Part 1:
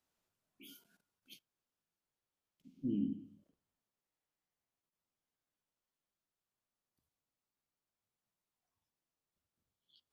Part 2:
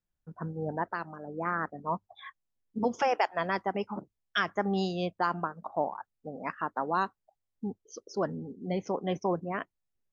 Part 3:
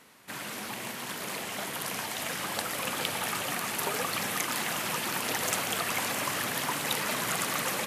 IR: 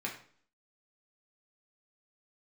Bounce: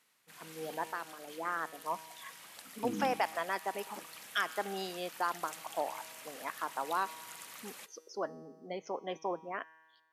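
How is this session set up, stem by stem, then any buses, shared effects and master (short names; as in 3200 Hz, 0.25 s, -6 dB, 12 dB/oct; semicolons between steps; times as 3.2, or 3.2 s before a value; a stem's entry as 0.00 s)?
0.0 dB, 0.00 s, no send, dry
-4.0 dB, 0.00 s, no send, HPF 320 Hz 12 dB/oct
-8.5 dB, 0.00 s, no send, tilt shelf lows -4 dB, about 1500 Hz; auto duck -12 dB, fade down 1.30 s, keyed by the second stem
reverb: off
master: AGC gain up to 8 dB; low shelf 390 Hz -5 dB; resonator 160 Hz, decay 1.5 s, mix 60%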